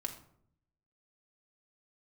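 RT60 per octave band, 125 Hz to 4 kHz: 1.0, 0.90, 0.75, 0.60, 0.45, 0.35 s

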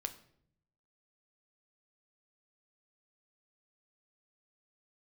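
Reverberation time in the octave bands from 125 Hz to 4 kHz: 1.1, 1.0, 0.75, 0.55, 0.55, 0.50 s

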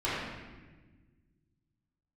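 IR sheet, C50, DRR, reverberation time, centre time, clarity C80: -2.0 dB, -12.5 dB, 1.3 s, 96 ms, 0.5 dB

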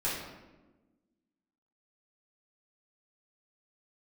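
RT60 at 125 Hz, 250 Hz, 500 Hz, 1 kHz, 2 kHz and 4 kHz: 1.4, 1.8, 1.3, 1.0, 0.90, 0.70 s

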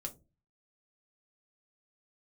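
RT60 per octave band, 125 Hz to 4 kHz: 0.55, 0.45, 0.35, 0.20, 0.15, 0.15 s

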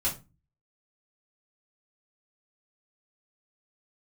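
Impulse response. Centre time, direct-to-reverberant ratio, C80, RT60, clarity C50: 21 ms, -7.0 dB, 18.0 dB, 0.25 s, 11.0 dB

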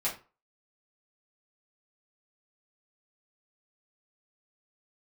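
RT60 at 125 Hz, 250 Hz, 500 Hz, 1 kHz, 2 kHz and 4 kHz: 0.35, 0.30, 0.30, 0.35, 0.30, 0.25 s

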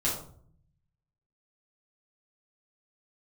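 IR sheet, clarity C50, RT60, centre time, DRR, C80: 4.0 dB, 0.55 s, 37 ms, -7.0 dB, 8.5 dB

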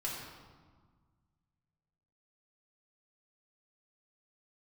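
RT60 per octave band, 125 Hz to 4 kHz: 2.6, 2.1, 1.5, 1.6, 1.1, 1.0 s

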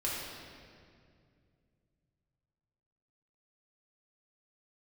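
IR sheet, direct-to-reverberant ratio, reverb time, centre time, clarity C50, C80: -7.0 dB, 2.3 s, 0.118 s, -1.0 dB, 0.5 dB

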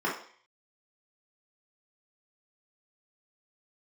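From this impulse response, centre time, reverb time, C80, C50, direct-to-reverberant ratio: 32 ms, 0.50 s, 11.0 dB, 5.5 dB, -6.5 dB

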